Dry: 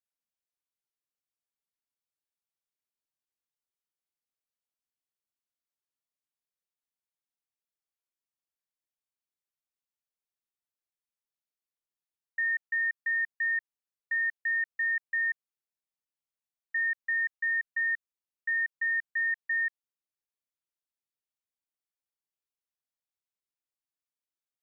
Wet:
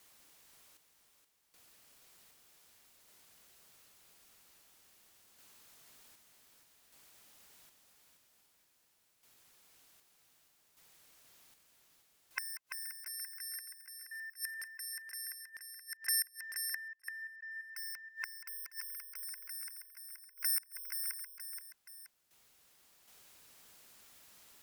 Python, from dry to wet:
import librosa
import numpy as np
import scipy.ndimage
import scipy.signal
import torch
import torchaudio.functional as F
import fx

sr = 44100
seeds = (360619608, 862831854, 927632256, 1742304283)

y = fx.band_invert(x, sr, width_hz=500)
y = fx.tremolo_random(y, sr, seeds[0], hz=1.3, depth_pct=100)
y = fx.fold_sine(y, sr, drive_db=19, ceiling_db=-24.5)
y = fx.echo_feedback(y, sr, ms=476, feedback_pct=44, wet_db=-6.5)
y = fx.gate_flip(y, sr, shuts_db=-36.0, range_db=-26)
y = F.gain(torch.from_numpy(y), 10.5).numpy()